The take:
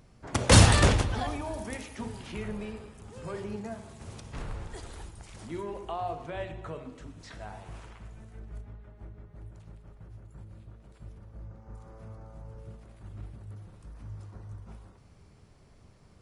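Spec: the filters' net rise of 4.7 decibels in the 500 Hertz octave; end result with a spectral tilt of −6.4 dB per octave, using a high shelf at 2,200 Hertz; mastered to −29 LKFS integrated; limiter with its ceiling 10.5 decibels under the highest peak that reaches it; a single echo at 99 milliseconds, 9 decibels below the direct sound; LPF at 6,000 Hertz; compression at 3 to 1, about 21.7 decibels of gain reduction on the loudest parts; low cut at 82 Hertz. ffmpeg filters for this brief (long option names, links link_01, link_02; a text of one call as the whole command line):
ffmpeg -i in.wav -af "highpass=82,lowpass=6000,equalizer=frequency=500:width_type=o:gain=6,highshelf=frequency=2200:gain=-5,acompressor=threshold=-44dB:ratio=3,alimiter=level_in=12dB:limit=-24dB:level=0:latency=1,volume=-12dB,aecho=1:1:99:0.355,volume=18.5dB" out.wav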